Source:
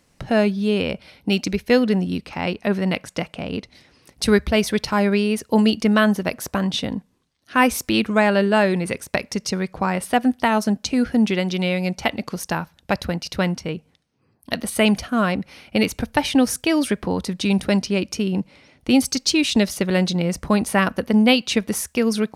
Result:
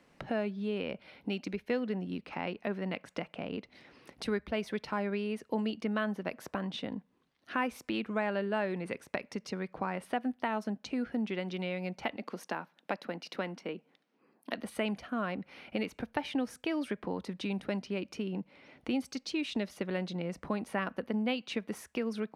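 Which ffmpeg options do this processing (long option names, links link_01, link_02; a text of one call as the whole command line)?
ffmpeg -i in.wav -filter_complex "[0:a]asettb=1/sr,asplit=3[link_01][link_02][link_03];[link_01]atrim=end=12.164[link_04];[link_02]atrim=start=12.16:end=14.58,asetpts=PTS-STARTPTS,afade=type=in:duration=0.004:curve=qsin,afade=type=out:start_time=2.416:duration=0.004:curve=qsin,highpass=frequency=200:width=0.5412,highpass=frequency=200:width=1.3066[link_05];[link_03]atrim=start=14.576[link_06];[link_04][link_05]acrossfade=duration=0.004:curve1=hsin:curve2=qsin[link_07];[link_07][link_06]acrossfade=duration=0.004:curve1=qsin:curve2=hsin,acompressor=threshold=-41dB:ratio=2,acrossover=split=170 3400:gain=0.251 1 0.2[link_08][link_09][link_10];[link_08][link_09][link_10]amix=inputs=3:normalize=0" out.wav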